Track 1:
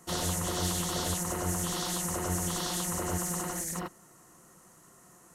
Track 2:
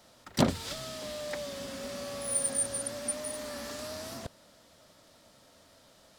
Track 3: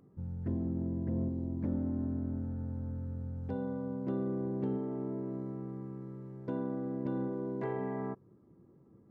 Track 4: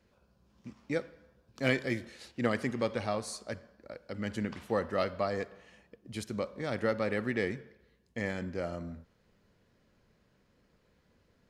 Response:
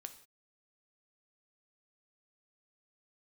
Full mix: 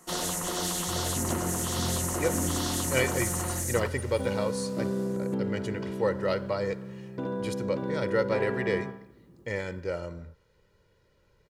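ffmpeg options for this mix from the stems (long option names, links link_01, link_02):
-filter_complex "[0:a]equalizer=frequency=88:width_type=o:width=1.2:gain=-13.5,volume=-1dB,asplit=2[link_01][link_02];[link_02]volume=-3.5dB[link_03];[1:a]adelay=900,volume=-11.5dB[link_04];[2:a]highshelf=frequency=2100:gain=10.5,adelay=700,volume=2dB,asplit=2[link_05][link_06];[link_06]volume=-3dB[link_07];[3:a]aecho=1:1:2.1:0.68,adelay=1300,volume=1dB[link_08];[4:a]atrim=start_sample=2205[link_09];[link_03][link_09]afir=irnorm=-1:irlink=0[link_10];[link_07]aecho=0:1:71|142|213|284|355|426:1|0.42|0.176|0.0741|0.0311|0.0131[link_11];[link_01][link_04][link_05][link_08][link_10][link_11]amix=inputs=6:normalize=0"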